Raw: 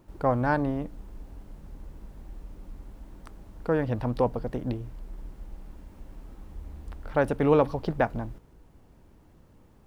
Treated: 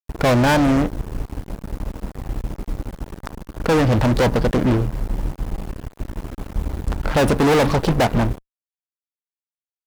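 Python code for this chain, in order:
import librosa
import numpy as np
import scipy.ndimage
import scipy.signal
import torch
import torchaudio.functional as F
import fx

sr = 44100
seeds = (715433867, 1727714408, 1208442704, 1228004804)

y = fx.fuzz(x, sr, gain_db=34.0, gate_db=-43.0)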